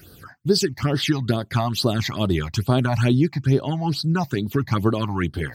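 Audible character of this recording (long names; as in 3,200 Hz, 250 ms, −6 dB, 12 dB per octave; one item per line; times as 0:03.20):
phaser sweep stages 8, 2.3 Hz, lowest notch 390–2,300 Hz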